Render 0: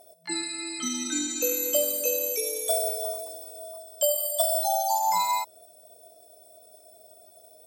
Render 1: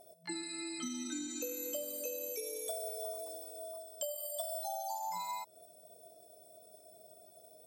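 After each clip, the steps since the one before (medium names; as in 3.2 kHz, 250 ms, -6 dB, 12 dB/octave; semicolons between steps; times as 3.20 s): bass shelf 350 Hz +9.5 dB; compression 4:1, threshold -32 dBFS, peak gain reduction 12 dB; trim -6.5 dB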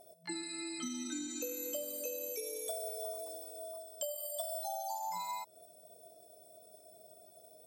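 no audible change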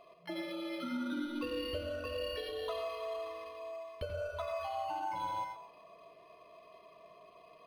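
on a send at -3 dB: reverberation RT60 0.65 s, pre-delay 78 ms; on the sum: decimation joined by straight lines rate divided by 6×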